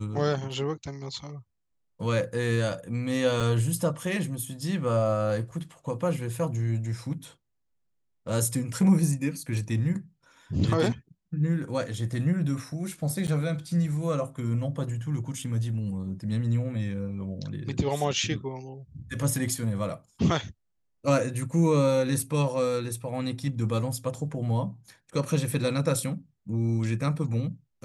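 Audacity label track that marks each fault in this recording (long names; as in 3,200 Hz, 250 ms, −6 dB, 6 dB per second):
3.400000	3.410000	drop-out 5.6 ms
13.270000	13.280000	drop-out 8.8 ms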